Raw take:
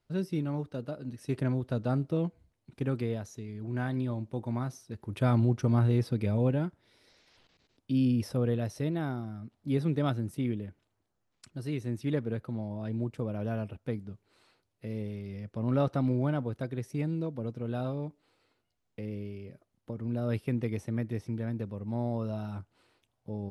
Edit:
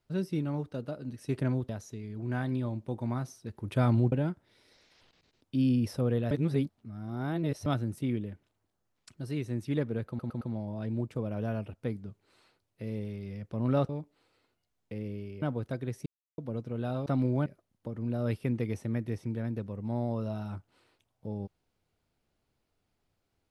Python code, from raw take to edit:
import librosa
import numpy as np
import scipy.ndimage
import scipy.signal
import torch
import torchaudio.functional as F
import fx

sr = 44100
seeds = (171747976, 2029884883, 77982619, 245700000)

y = fx.edit(x, sr, fx.cut(start_s=1.69, length_s=1.45),
    fx.cut(start_s=5.57, length_s=0.91),
    fx.reverse_span(start_s=8.67, length_s=1.35),
    fx.stutter(start_s=12.44, slice_s=0.11, count=4),
    fx.swap(start_s=15.92, length_s=0.4, other_s=17.96, other_length_s=1.53),
    fx.silence(start_s=16.96, length_s=0.32), tone=tone)